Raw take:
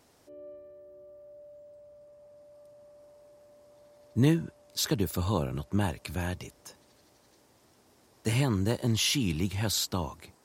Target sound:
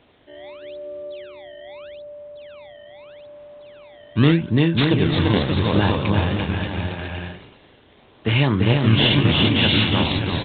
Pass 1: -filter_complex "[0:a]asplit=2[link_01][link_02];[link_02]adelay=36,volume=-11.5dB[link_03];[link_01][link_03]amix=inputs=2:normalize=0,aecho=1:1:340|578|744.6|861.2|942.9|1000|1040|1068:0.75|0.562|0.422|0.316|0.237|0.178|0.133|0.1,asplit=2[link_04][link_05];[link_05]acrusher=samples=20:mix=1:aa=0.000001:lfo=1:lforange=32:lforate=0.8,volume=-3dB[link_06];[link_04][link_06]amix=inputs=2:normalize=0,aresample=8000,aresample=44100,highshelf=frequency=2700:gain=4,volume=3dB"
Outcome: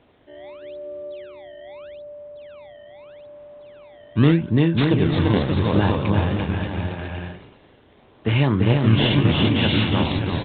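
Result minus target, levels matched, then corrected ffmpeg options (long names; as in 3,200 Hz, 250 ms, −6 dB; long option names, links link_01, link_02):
4,000 Hz band −4.5 dB
-filter_complex "[0:a]asplit=2[link_01][link_02];[link_02]adelay=36,volume=-11.5dB[link_03];[link_01][link_03]amix=inputs=2:normalize=0,aecho=1:1:340|578|744.6|861.2|942.9|1000|1040|1068:0.75|0.562|0.422|0.316|0.237|0.178|0.133|0.1,asplit=2[link_04][link_05];[link_05]acrusher=samples=20:mix=1:aa=0.000001:lfo=1:lforange=32:lforate=0.8,volume=-3dB[link_06];[link_04][link_06]amix=inputs=2:normalize=0,aresample=8000,aresample=44100,highshelf=frequency=2700:gain=13.5,volume=3dB"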